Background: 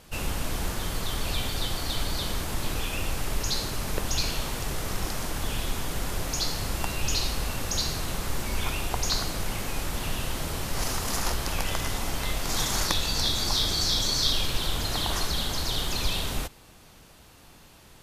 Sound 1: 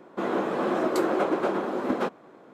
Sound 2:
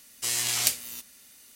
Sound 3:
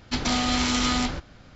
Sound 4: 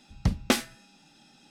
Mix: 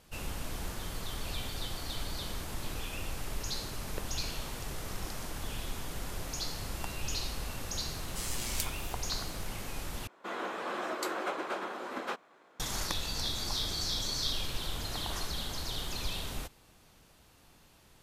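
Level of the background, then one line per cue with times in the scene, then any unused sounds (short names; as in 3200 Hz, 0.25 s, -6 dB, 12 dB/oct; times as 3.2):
background -8.5 dB
7.93 add 2 -12 dB
10.07 replace with 1 -9.5 dB + tilt shelf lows -9.5 dB, about 720 Hz
not used: 3, 4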